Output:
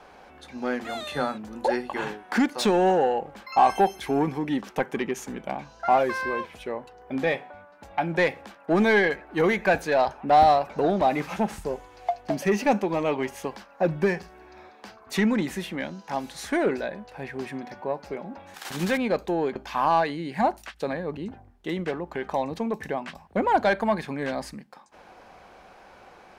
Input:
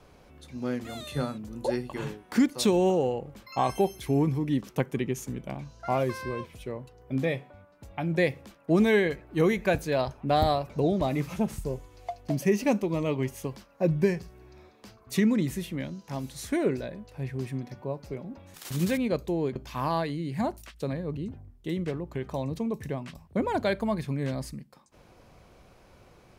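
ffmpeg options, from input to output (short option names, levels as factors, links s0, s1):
-filter_complex "[0:a]asplit=2[s0][s1];[s1]highpass=f=720:p=1,volume=5.01,asoftclip=type=tanh:threshold=0.224[s2];[s0][s2]amix=inputs=2:normalize=0,lowpass=f=2800:p=1,volume=0.501,equalizer=f=125:t=o:w=0.33:g=-12,equalizer=f=200:t=o:w=0.33:g=3,equalizer=f=800:t=o:w=0.33:g=8,equalizer=f=1600:t=o:w=0.33:g=5"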